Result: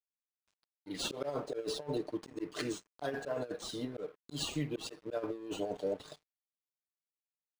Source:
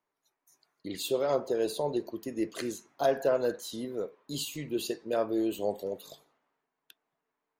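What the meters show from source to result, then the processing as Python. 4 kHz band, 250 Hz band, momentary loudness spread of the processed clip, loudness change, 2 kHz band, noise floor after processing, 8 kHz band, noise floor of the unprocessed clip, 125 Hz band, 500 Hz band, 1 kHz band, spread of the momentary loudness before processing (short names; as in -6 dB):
-1.5 dB, -6.0 dB, 6 LU, -7.0 dB, -3.0 dB, under -85 dBFS, -4.0 dB, under -85 dBFS, 0.0 dB, -8.5 dB, -8.5 dB, 10 LU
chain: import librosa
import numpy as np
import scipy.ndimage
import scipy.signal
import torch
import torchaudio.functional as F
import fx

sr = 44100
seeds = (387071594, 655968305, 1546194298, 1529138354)

y = fx.notch(x, sr, hz=910.0, q=30.0)
y = y + 0.81 * np.pad(y, (int(6.7 * sr / 1000.0), 0))[:len(y)]
y = fx.auto_swell(y, sr, attack_ms=136.0)
y = fx.over_compress(y, sr, threshold_db=-31.0, ratio=-0.5)
y = np.sign(y) * np.maximum(np.abs(y) - 10.0 ** (-52.0 / 20.0), 0.0)
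y = np.interp(np.arange(len(y)), np.arange(len(y))[::3], y[::3])
y = y * librosa.db_to_amplitude(-2.5)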